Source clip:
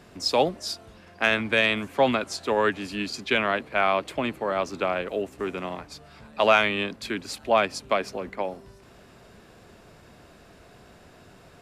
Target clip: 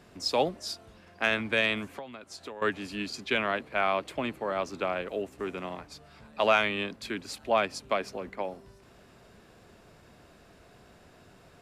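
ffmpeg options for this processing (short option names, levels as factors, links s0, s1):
-filter_complex "[0:a]asettb=1/sr,asplit=3[s0][s1][s2];[s0]atrim=end=1.854[s3];[s1]atrim=start=1.85:end=2.62,asetpts=PTS-STARTPTS,afade=t=in:d=0.004:c=qsin,afade=t=out:st=0.766:d=0.004:c=qsin,acompressor=threshold=0.02:ratio=20[s4];[s2]atrim=start=2.616[s5];[s3][s4]acrossfade=d=0.004:c1=hsin:c2=qsin[s6];[s6][s5]acrossfade=d=0.004:c1=qsin:c2=hsin,volume=0.596"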